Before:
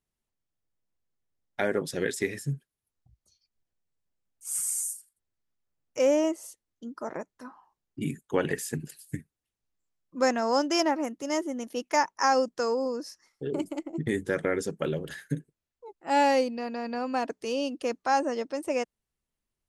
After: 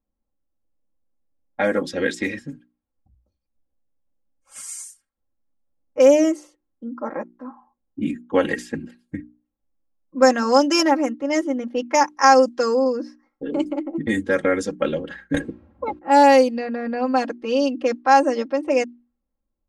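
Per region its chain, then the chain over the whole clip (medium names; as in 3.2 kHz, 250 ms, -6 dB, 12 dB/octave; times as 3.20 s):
15.34–15.99 s: high-pass 87 Hz 24 dB/octave + tilt EQ -4 dB/octave + spectrum-flattening compressor 4:1
whole clip: hum notches 60/120/180/240/300/360 Hz; level-controlled noise filter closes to 750 Hz, open at -22 dBFS; comb 3.7 ms, depth 93%; trim +5 dB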